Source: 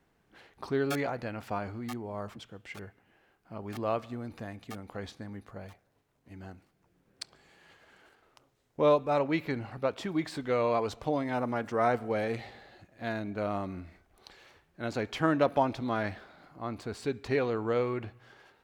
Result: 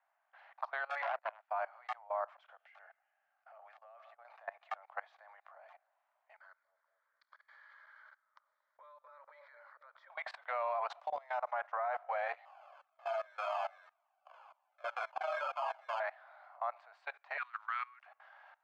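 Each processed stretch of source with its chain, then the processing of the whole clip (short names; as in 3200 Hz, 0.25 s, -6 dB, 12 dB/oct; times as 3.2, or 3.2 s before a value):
1.02–1.51 gate -39 dBFS, range -22 dB + core saturation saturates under 2800 Hz
2.55–4.25 LPF 8900 Hz + notch 990 Hz, Q 5.8 + compressor 10:1, threshold -46 dBFS
6.39–10.1 fixed phaser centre 2700 Hz, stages 6 + compressor 10:1, threshold -44 dBFS + analogue delay 0.23 s, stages 1024, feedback 53%, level -5 dB
11–11.52 tone controls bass +10 dB, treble +14 dB + compressor 10:1, threshold -30 dBFS
12.45–16 sample-rate reducer 1900 Hz + doubler 44 ms -3.5 dB + cascading flanger falling 1.9 Hz
17.37–18.06 steep high-pass 1200 Hz + sample gate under -55.5 dBFS
whole clip: steep high-pass 620 Hz 72 dB/oct; level quantiser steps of 22 dB; LPF 1600 Hz 12 dB/oct; gain +9.5 dB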